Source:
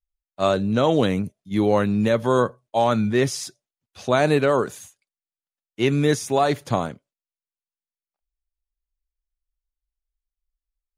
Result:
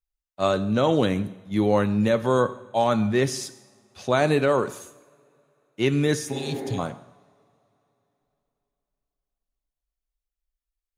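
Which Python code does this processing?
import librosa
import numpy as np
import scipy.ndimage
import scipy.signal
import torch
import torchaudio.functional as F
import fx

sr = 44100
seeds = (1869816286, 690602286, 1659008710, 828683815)

y = fx.rev_double_slope(x, sr, seeds[0], early_s=0.89, late_s=3.5, knee_db=-22, drr_db=13.0)
y = fx.spec_repair(y, sr, seeds[1], start_s=6.35, length_s=0.41, low_hz=210.0, high_hz=2300.0, source='before')
y = y * 10.0 ** (-2.0 / 20.0)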